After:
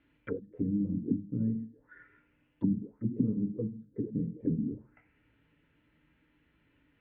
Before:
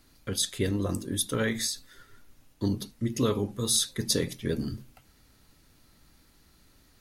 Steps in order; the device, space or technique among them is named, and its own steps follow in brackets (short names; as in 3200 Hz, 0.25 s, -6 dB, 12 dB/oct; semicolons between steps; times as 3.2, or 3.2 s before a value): 0.93–1.57 tone controls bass +2 dB, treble +8 dB; FDN reverb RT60 0.41 s, low-frequency decay 0.75×, high-frequency decay 0.45×, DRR 3.5 dB; envelope filter bass rig (envelope low-pass 200–3300 Hz down, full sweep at -24.5 dBFS; speaker cabinet 62–2200 Hz, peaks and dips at 90 Hz -6 dB, 740 Hz -9 dB, 1200 Hz -7 dB); gain -7 dB